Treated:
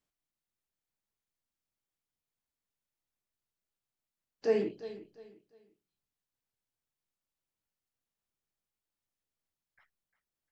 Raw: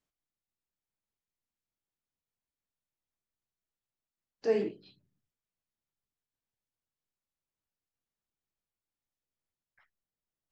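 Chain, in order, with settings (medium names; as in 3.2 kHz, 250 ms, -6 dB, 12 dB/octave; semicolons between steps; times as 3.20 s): feedback delay 351 ms, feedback 30%, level -15 dB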